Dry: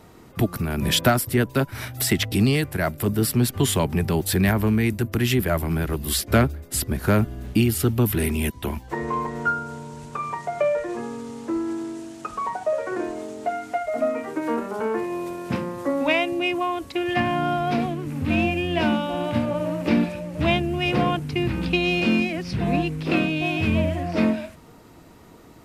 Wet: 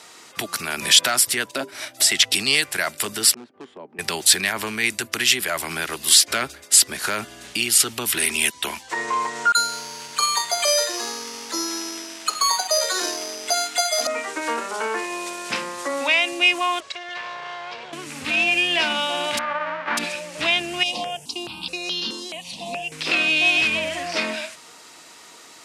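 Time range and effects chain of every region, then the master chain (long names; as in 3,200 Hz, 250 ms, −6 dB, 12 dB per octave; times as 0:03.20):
0:01.51–0:02.12: mains-hum notches 50/100/150/200/250/300/350/400/450/500 Hz + hollow resonant body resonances 310/590 Hz, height 15 dB, ringing for 30 ms + expander for the loud parts, over −31 dBFS
0:03.34–0:03.99: four-pole ladder band-pass 340 Hz, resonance 20% + gain into a clipping stage and back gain 26.5 dB
0:09.52–0:14.07: all-pass dispersion lows, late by 49 ms, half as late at 1,700 Hz + bad sample-rate conversion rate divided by 8×, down none, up hold
0:16.80–0:17.93: lower of the sound and its delayed copy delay 1.8 ms + high-frequency loss of the air 130 metres + downward compressor 5 to 1, threshold −35 dBFS
0:19.37–0:19.97: spectral envelope flattened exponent 0.1 + low-pass filter 1,600 Hz 24 dB per octave
0:20.83–0:22.92: flat-topped bell 1,700 Hz −12.5 dB 1.1 octaves + downward compressor 1.5 to 1, threshold −28 dBFS + step-sequenced phaser 4.7 Hz 400–2,400 Hz
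whole clip: low-shelf EQ 170 Hz −6 dB; brickwall limiter −17 dBFS; meter weighting curve ITU-R 468; level +4.5 dB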